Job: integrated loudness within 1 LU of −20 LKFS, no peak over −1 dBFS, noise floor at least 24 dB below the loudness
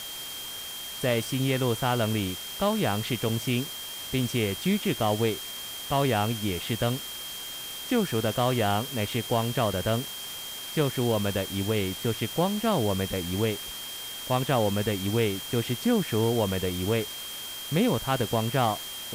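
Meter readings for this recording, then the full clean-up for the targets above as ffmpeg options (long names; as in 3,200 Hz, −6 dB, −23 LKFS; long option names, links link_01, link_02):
interfering tone 3,200 Hz; level of the tone −38 dBFS; background noise floor −38 dBFS; target noise floor −52 dBFS; integrated loudness −27.5 LKFS; sample peak −10.0 dBFS; target loudness −20.0 LKFS
→ -af "bandreject=frequency=3200:width=30"
-af "afftdn=noise_reduction=14:noise_floor=-38"
-af "volume=7.5dB"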